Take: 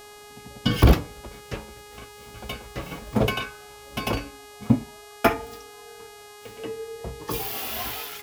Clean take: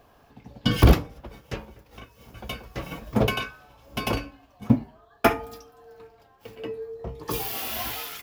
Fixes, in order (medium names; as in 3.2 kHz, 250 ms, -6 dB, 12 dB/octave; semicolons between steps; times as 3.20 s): de-hum 415.2 Hz, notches 32